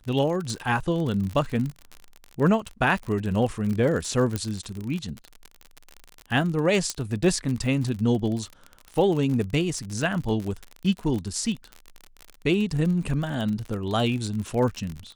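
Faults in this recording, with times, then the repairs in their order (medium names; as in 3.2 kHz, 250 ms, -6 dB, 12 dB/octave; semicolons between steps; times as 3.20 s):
crackle 49 per s -29 dBFS
4.36 s: pop -13 dBFS
6.90 s: pop -12 dBFS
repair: de-click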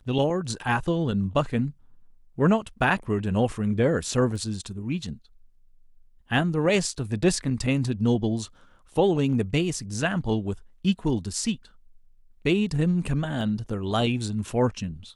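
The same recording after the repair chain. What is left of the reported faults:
4.36 s: pop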